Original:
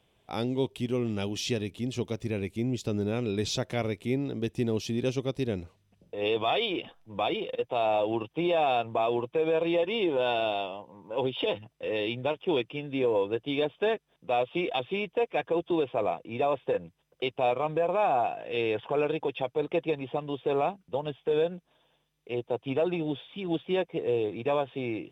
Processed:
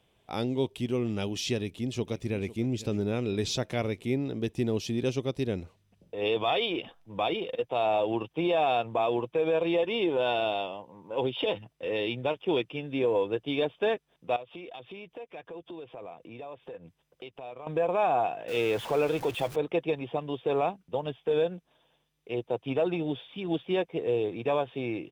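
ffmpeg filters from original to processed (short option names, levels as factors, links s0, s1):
-filter_complex "[0:a]asplit=2[s0][s1];[s1]afade=t=in:st=1.57:d=0.01,afade=t=out:st=2.51:d=0.01,aecho=0:1:500|1000|1500|2000|2500:0.149624|0.082293|0.0452611|0.0248936|0.0136915[s2];[s0][s2]amix=inputs=2:normalize=0,asettb=1/sr,asplit=3[s3][s4][s5];[s3]atrim=end=14.364[s6];[s4]atrim=start=14.36:end=17.67,asetpts=PTS-STARTPTS,afade=t=in:d=0.004:c=qsin,afade=t=out:st=3.306:d=0.004:c=qsin,acompressor=threshold=0.00631:ratio=3:attack=3.2:release=140:knee=1:detection=peak[s7];[s5]atrim=start=17.666[s8];[s6][s7]acrossfade=d=0.004:c1=hsin:c2=qsin[s9];[s9][s8]acrossfade=d=0.004:c1=qsin:c2=hsin,asettb=1/sr,asplit=3[s10][s11][s12];[s10]atrim=end=18.484[s13];[s11]atrim=start=18.48:end=19.56,asetpts=PTS-STARTPTS,afade=t=in:d=0.004:c=qsin,afade=t=out:st=1.076:d=0.004:c=qsin,aeval=exprs='val(0)+0.5*0.015*sgn(val(0))':c=same[s14];[s12]atrim=start=19.556[s15];[s13][s14]acrossfade=d=0.004:c1=hsin:c2=qsin[s16];[s16][s15]acrossfade=d=0.004:c1=qsin:c2=hsin"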